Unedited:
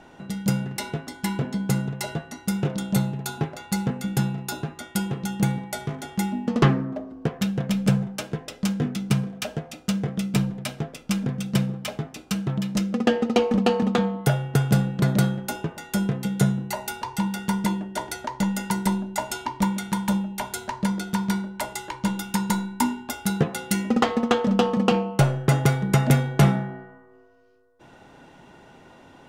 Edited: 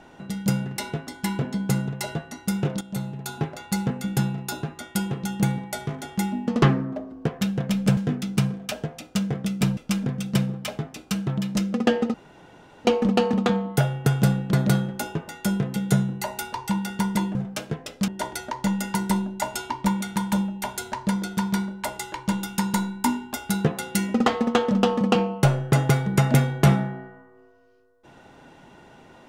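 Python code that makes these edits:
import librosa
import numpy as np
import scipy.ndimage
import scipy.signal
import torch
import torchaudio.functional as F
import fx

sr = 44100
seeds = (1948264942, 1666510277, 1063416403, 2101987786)

y = fx.edit(x, sr, fx.fade_in_from(start_s=2.81, length_s=0.67, floor_db=-13.0),
    fx.move(start_s=7.97, length_s=0.73, to_s=17.84),
    fx.cut(start_s=10.5, length_s=0.47),
    fx.insert_room_tone(at_s=13.34, length_s=0.71), tone=tone)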